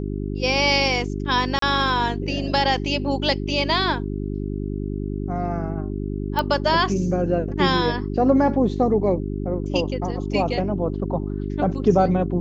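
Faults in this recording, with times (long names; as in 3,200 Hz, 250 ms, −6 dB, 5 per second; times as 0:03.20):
mains hum 50 Hz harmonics 8 −27 dBFS
0:01.59–0:01.62: drop-out 33 ms
0:06.39: click −10 dBFS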